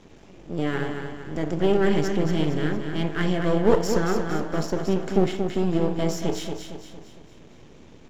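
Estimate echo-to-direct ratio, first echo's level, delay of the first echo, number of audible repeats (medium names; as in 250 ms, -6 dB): -5.5 dB, -6.5 dB, 230 ms, 5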